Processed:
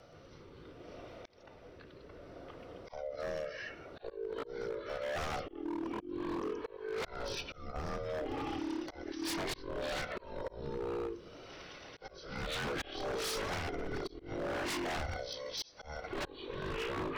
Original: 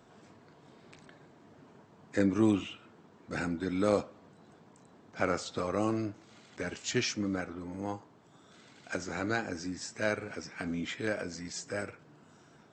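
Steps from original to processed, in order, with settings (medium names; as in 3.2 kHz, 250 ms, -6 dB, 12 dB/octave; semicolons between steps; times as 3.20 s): split-band scrambler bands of 500 Hz; ever faster or slower copies 94 ms, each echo -5 st, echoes 2; compression 4:1, threshold -31 dBFS, peak gain reduction 9.5 dB; rotary cabinet horn 0.9 Hz; speed mistake 45 rpm record played at 33 rpm; treble shelf 4.6 kHz +5.5 dB; slow attack 417 ms; wavefolder -37 dBFS; trim +5.5 dB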